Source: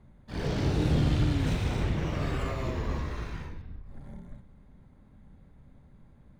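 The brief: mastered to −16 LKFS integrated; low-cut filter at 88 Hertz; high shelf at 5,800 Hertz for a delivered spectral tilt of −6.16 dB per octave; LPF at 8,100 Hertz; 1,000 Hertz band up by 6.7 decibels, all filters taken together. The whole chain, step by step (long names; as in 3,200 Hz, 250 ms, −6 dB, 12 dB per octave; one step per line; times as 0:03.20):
high-pass filter 88 Hz
low-pass filter 8,100 Hz
parametric band 1,000 Hz +8.5 dB
high-shelf EQ 5,800 Hz −5 dB
level +14.5 dB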